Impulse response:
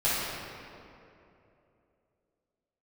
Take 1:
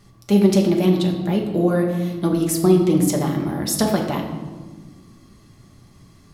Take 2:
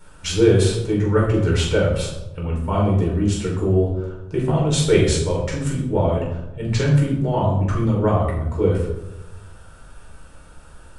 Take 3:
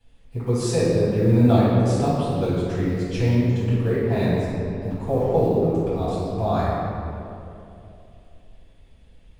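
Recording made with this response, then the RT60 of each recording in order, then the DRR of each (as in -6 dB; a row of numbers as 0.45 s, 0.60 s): 3; 1.4 s, 1.0 s, 2.9 s; 0.5 dB, -4.0 dB, -11.5 dB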